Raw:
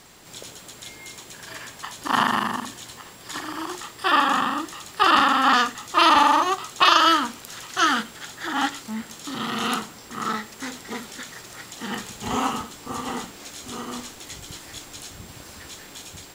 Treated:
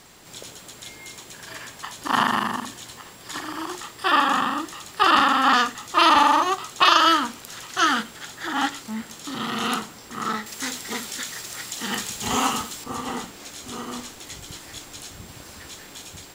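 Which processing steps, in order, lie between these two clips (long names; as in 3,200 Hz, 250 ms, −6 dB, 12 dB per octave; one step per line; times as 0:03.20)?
0:10.46–0:12.84: high-shelf EQ 2,300 Hz +9 dB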